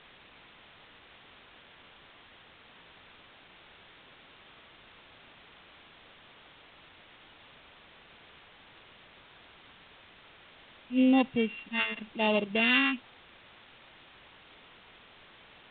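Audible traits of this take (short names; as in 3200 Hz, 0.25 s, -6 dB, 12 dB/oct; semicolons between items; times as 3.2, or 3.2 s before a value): a buzz of ramps at a fixed pitch in blocks of 16 samples; phasing stages 2, 0.83 Hz, lowest notch 600–1500 Hz; a quantiser's noise floor 8-bit, dither triangular; µ-law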